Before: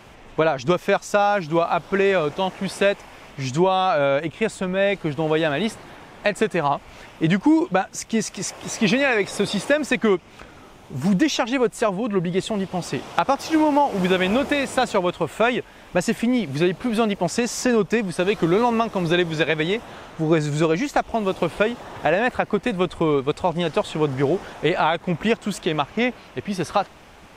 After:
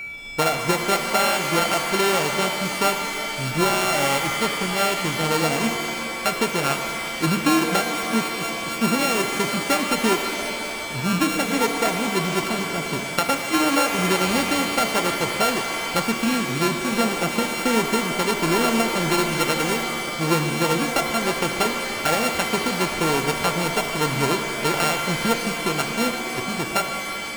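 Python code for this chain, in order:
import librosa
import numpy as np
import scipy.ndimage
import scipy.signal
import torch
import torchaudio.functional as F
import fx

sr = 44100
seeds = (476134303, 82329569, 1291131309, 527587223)

y = np.r_[np.sort(x[:len(x) // 32 * 32].reshape(-1, 32), axis=1).ravel(), x[len(x) // 32 * 32:]]
y = y + 10.0 ** (-28.0 / 20.0) * np.sin(2.0 * np.pi * 2300.0 * np.arange(len(y)) / sr)
y = fx.rev_shimmer(y, sr, seeds[0], rt60_s=3.0, semitones=7, shimmer_db=-2, drr_db=5.5)
y = F.gain(torch.from_numpy(y), -2.5).numpy()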